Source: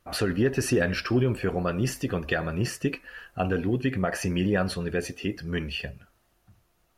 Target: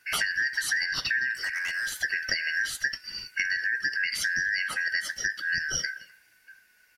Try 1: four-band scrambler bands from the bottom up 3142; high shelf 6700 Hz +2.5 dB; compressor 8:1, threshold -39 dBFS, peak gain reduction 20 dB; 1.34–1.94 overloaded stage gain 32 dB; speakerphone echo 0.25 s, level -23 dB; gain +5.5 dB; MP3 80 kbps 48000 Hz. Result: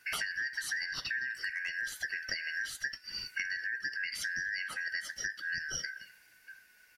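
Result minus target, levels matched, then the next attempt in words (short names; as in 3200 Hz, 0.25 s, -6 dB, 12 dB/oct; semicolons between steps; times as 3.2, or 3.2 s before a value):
compressor: peak gain reduction +8.5 dB
four-band scrambler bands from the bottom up 3142; high shelf 6700 Hz +2.5 dB; compressor 8:1, threshold -29.5 dBFS, peak gain reduction 11.5 dB; 1.34–1.94 overloaded stage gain 32 dB; speakerphone echo 0.25 s, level -23 dB; gain +5.5 dB; MP3 80 kbps 48000 Hz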